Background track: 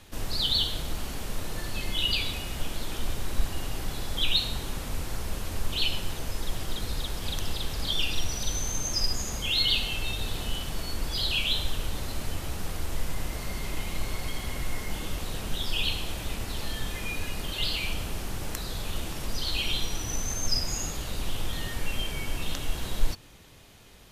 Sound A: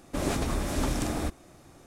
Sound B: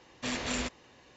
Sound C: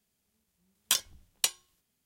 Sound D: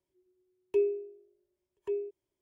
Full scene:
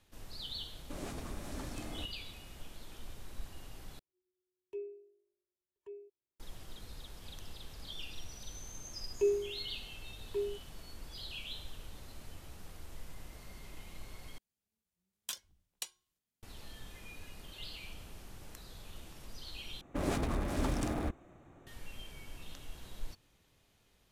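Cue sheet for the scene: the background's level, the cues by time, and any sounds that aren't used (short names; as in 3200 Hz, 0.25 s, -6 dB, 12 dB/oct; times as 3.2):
background track -17 dB
0.76 add A -14.5 dB
3.99 replace with D -15.5 dB
8.47 add D -2.5 dB
14.38 replace with C -14.5 dB
19.81 replace with A -4.5 dB + Wiener smoothing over 9 samples
not used: B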